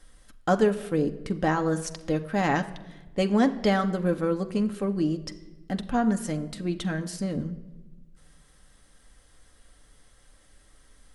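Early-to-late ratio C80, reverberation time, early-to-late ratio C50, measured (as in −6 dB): 16.5 dB, 1.1 s, 15.0 dB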